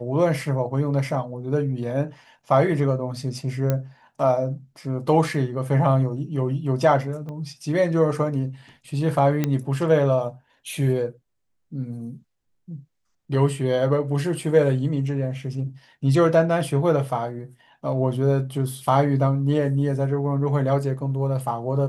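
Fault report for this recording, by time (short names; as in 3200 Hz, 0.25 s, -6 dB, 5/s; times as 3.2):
3.7 pop -10 dBFS
7.29 pop -25 dBFS
9.44 pop -9 dBFS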